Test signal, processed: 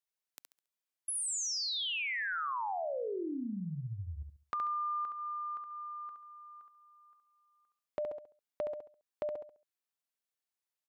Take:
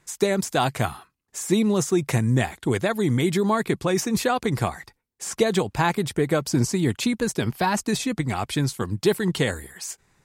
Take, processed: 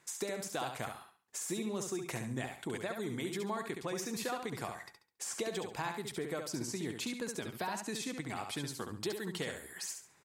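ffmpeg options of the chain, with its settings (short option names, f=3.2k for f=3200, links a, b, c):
-filter_complex "[0:a]highpass=f=330:p=1,acompressor=threshold=-39dB:ratio=2.5,asplit=2[a][b];[b]aecho=0:1:69|138|207|276:0.501|0.145|0.0421|0.0122[c];[a][c]amix=inputs=2:normalize=0,volume=-2.5dB"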